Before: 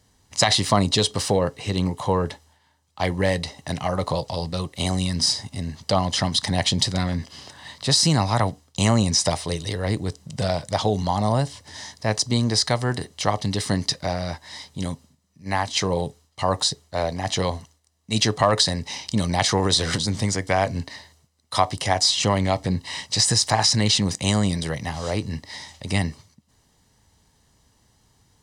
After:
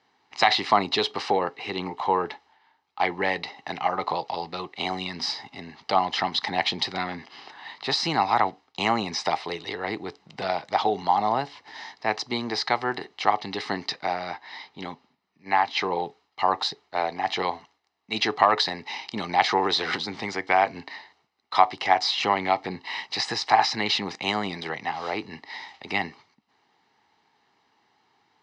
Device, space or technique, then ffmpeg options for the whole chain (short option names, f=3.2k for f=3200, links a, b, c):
phone earpiece: -filter_complex "[0:a]asettb=1/sr,asplit=3[a][b][c];[a]atrim=end=14.344[d];[b]atrim=start=14.34:end=16.06,asetpts=PTS-STARTPTS,afade=t=in:d=0.004:c=qsin,afade=t=out:st=1.716:d=0.004:c=qsin,lowpass=6.1k[e];[c]atrim=start=16.056[f];[d][e]acrossfade=d=0.004:c1=hsin:c2=qsin[g];[g][f]acrossfade=d=0.004:c1=qsin:c2=hsin,highpass=350,equalizer=f=370:t=q:w=4:g=4,equalizer=f=560:t=q:w=4:g=-9,equalizer=f=810:t=q:w=4:g=8,equalizer=f=1.3k:t=q:w=4:g=4,equalizer=f=2.2k:t=q:w=4:g=4,equalizer=f=3.2k:t=q:w=4:g=-5,lowpass=f=4.2k:w=0.5412,lowpass=f=4.2k:w=1.3066,equalizer=f=2.8k:w=2.2:g=3,volume=-1dB"